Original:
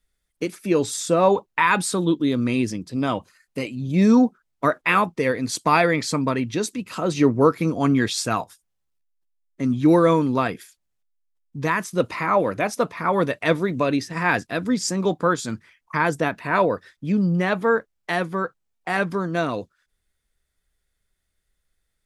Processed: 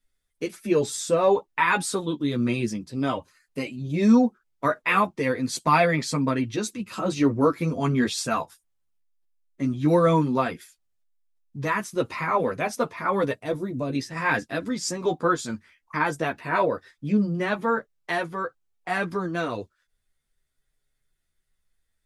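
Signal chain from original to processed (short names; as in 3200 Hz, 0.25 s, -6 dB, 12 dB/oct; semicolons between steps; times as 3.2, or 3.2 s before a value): 13.33–13.95 bell 2100 Hz -13.5 dB 2.8 oct; chorus voices 4, 0.15 Hz, delay 11 ms, depth 3.5 ms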